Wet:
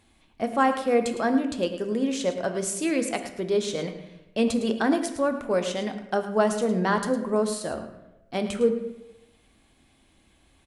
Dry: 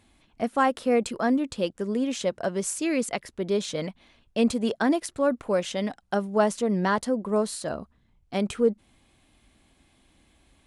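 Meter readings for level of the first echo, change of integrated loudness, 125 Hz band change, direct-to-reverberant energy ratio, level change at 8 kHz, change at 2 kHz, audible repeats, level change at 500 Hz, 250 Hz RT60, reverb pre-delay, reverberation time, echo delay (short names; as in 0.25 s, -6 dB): -12.5 dB, +0.5 dB, -0.5 dB, 6.0 dB, +0.5 dB, +1.0 dB, 1, +1.0 dB, 0.90 s, 3 ms, 0.95 s, 0.108 s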